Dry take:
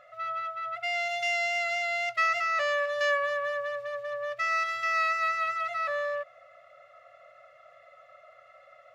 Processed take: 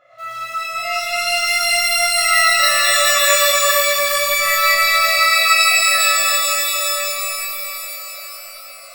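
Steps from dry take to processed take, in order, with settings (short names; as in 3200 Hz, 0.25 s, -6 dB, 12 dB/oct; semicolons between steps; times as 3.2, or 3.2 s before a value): in parallel at -11.5 dB: bit-crush 6-bit; on the sum: split-band echo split 620 Hz, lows 0.131 s, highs 0.415 s, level -9.5 dB; shimmer reverb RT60 3.6 s, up +12 st, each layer -2 dB, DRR -11 dB; gain -3 dB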